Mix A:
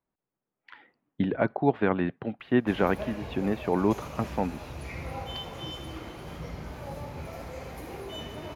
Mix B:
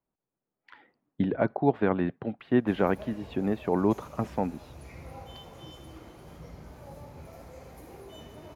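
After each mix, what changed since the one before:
background -7.0 dB; master: add FFT filter 640 Hz 0 dB, 2.8 kHz -5 dB, 8 kHz +2 dB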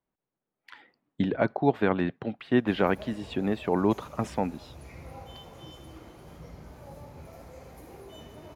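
speech: remove low-pass 1.5 kHz 6 dB/octave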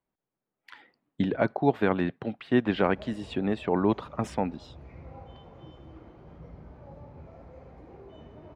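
background: add tape spacing loss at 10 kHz 35 dB

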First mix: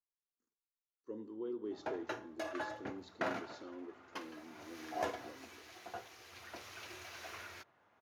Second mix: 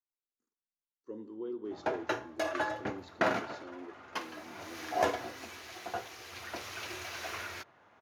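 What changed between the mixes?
background +8.5 dB; reverb: on

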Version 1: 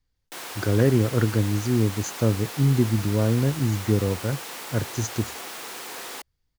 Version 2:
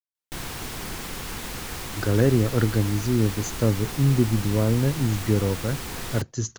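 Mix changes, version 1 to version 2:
speech: entry +1.40 s; background: remove Chebyshev high-pass 500 Hz, order 2

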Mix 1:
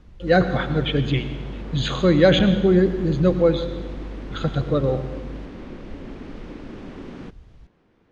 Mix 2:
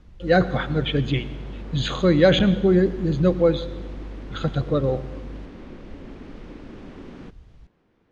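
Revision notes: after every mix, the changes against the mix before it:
speech: send -6.0 dB; background -3.5 dB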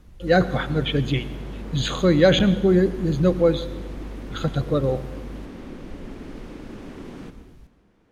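background: send on; master: remove low-pass 5.2 kHz 12 dB/octave

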